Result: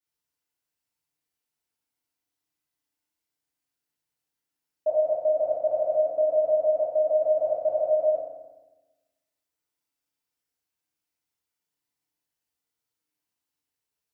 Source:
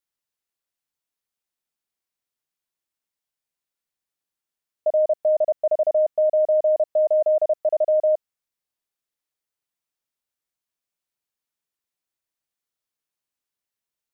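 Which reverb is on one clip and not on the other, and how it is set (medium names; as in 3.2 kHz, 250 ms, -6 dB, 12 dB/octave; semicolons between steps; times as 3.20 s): FDN reverb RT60 1.1 s, low-frequency decay 1.4×, high-frequency decay 0.85×, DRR -9 dB; trim -8 dB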